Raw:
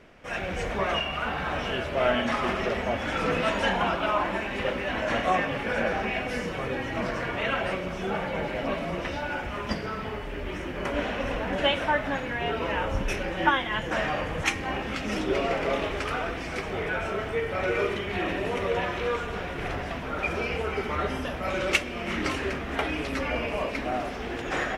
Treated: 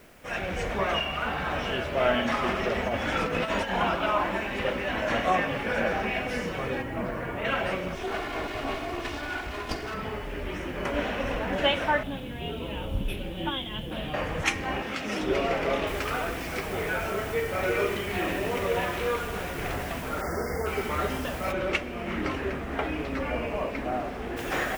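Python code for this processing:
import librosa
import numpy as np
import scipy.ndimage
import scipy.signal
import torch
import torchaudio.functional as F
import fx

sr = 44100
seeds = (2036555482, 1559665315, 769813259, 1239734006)

y = fx.over_compress(x, sr, threshold_db=-27.0, ratio=-0.5, at=(2.75, 3.8))
y = fx.spacing_loss(y, sr, db_at_10k=29, at=(6.81, 7.44), fade=0.02)
y = fx.lower_of_two(y, sr, delay_ms=2.8, at=(7.95, 9.94))
y = fx.curve_eq(y, sr, hz=(210.0, 780.0, 1900.0, 3400.0, 6300.0, 11000.0), db=(0, -10, -16, 3, -27, 4), at=(12.03, 14.14))
y = fx.highpass(y, sr, hz=210.0, slope=6, at=(14.82, 15.22))
y = fx.noise_floor_step(y, sr, seeds[0], at_s=15.87, before_db=-62, after_db=-47, tilt_db=0.0)
y = fx.brickwall_bandstop(y, sr, low_hz=2200.0, high_hz=4500.0, at=(20.2, 20.65), fade=0.02)
y = fx.lowpass(y, sr, hz=1700.0, slope=6, at=(21.51, 24.36), fade=0.02)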